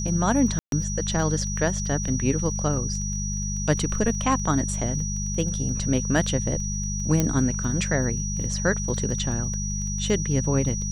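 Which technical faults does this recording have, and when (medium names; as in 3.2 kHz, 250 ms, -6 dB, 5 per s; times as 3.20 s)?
crackle 15 per s -33 dBFS
hum 50 Hz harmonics 4 -29 dBFS
whine 5.8 kHz -31 dBFS
0.59–0.72 s: dropout 132 ms
7.20 s: pop -8 dBFS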